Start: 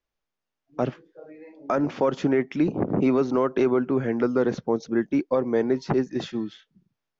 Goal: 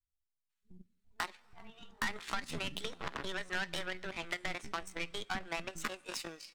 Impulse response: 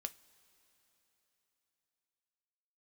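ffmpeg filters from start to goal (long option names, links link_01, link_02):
-filter_complex "[0:a]aeval=exprs='if(lt(val(0),0),0.708*val(0),val(0))':channel_layout=same,bandreject=frequency=3400:width=17,atempo=1.1,equalizer=frequency=125:width_type=o:width=1:gain=-8,equalizer=frequency=250:width_type=o:width=1:gain=-11,equalizer=frequency=500:width_type=o:width=1:gain=-6,acompressor=threshold=-39dB:ratio=8,acrossover=split=190[link_01][link_02];[link_02]adelay=500[link_03];[link_01][link_03]amix=inputs=2:normalize=0,aeval=exprs='0.0562*(cos(1*acos(clip(val(0)/0.0562,-1,1)))-cos(1*PI/2))+0.000562*(cos(2*acos(clip(val(0)/0.0562,-1,1)))-cos(2*PI/2))+0.00708*(cos(7*acos(clip(val(0)/0.0562,-1,1)))-cos(7*PI/2))':channel_layout=same,equalizer=frequency=400:width_type=o:width=1.6:gain=-10,aeval=exprs='(tanh(141*val(0)+0.15)-tanh(0.15))/141':channel_layout=same,asplit=2[link_04][link_05];[1:a]atrim=start_sample=2205[link_06];[link_05][link_06]afir=irnorm=-1:irlink=0,volume=5dB[link_07];[link_04][link_07]amix=inputs=2:normalize=0,asetrate=64194,aresample=44100,atempo=0.686977,volume=11dB"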